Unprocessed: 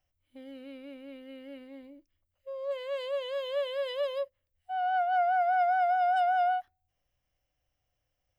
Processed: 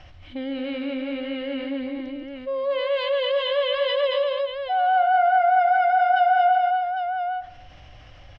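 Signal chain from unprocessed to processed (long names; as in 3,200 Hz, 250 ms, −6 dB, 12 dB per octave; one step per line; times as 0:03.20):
low-pass filter 4,300 Hz 24 dB per octave
parametric band 480 Hz −5.5 dB 0.35 octaves
multi-tap delay 139/227/804 ms −9.5/−4.5/−14.5 dB
on a send at −19 dB: convolution reverb RT60 0.60 s, pre-delay 9 ms
on the sum: envelope flattener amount 50%
level +4.5 dB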